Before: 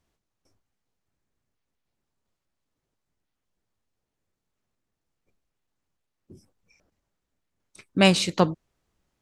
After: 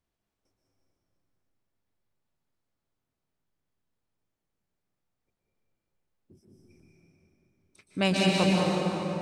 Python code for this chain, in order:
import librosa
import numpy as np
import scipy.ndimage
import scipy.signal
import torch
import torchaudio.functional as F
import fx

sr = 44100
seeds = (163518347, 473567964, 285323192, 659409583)

p1 = fx.peak_eq(x, sr, hz=7000.0, db=-2.5, octaves=0.67)
p2 = p1 + fx.echo_single(p1, sr, ms=198, db=-6.0, dry=0)
p3 = fx.rev_plate(p2, sr, seeds[0], rt60_s=4.2, hf_ratio=0.55, predelay_ms=110, drr_db=-3.5)
y = p3 * 10.0 ** (-8.5 / 20.0)